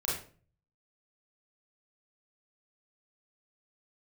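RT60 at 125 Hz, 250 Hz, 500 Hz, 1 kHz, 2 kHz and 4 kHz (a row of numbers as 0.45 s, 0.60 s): 0.80 s, 0.55 s, 0.45 s, 0.40 s, 0.35 s, 0.30 s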